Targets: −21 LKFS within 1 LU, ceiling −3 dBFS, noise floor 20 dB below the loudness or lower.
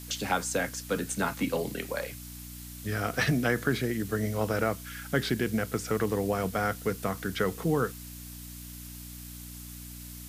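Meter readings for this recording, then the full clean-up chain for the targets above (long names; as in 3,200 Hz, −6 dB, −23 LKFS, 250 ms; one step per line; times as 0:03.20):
mains hum 60 Hz; hum harmonics up to 300 Hz; level of the hum −42 dBFS; background noise floor −43 dBFS; target noise floor −50 dBFS; integrated loudness −30.0 LKFS; sample peak −12.5 dBFS; target loudness −21.0 LKFS
→ hum removal 60 Hz, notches 5
noise reduction from a noise print 7 dB
level +9 dB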